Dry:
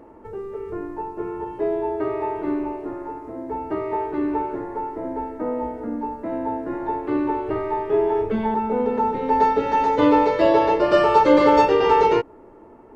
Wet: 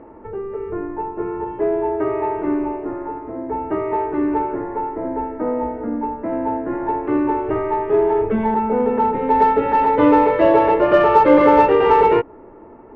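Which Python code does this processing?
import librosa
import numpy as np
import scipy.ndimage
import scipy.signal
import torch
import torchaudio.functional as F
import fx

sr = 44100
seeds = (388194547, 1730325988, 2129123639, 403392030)

p1 = scipy.signal.sosfilt(scipy.signal.butter(4, 2600.0, 'lowpass', fs=sr, output='sos'), x)
p2 = 10.0 ** (-20.0 / 20.0) * np.tanh(p1 / 10.0 ** (-20.0 / 20.0))
p3 = p1 + (p2 * 10.0 ** (-9.5 / 20.0))
y = p3 * 10.0 ** (2.0 / 20.0)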